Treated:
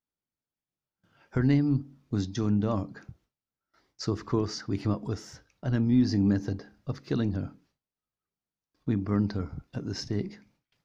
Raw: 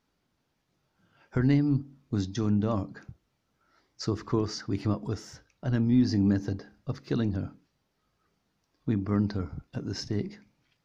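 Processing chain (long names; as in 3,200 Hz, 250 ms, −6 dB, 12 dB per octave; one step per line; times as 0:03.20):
noise gate with hold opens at −58 dBFS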